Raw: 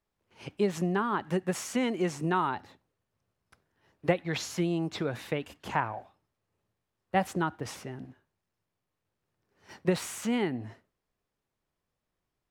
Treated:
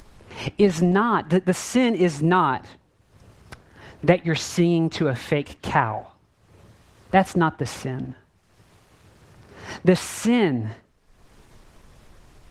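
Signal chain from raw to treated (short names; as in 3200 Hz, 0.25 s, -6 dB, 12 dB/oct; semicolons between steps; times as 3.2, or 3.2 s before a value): LPF 9400 Hz 12 dB/oct; low shelf 81 Hz +9.5 dB; in parallel at +2 dB: upward compressor, threshold -29 dBFS; on the sum: gain +2 dB; Opus 20 kbps 48000 Hz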